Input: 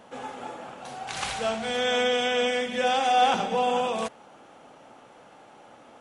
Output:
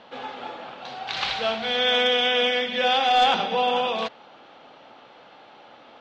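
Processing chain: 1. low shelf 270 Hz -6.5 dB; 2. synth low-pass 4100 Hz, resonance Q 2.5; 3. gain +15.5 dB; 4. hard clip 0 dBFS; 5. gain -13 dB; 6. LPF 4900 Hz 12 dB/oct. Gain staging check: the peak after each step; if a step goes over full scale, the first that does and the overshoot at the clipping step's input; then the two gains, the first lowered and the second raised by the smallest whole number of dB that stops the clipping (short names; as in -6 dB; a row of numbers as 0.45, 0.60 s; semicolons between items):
-11.0, -9.5, +6.0, 0.0, -13.0, -12.5 dBFS; step 3, 6.0 dB; step 3 +9.5 dB, step 5 -7 dB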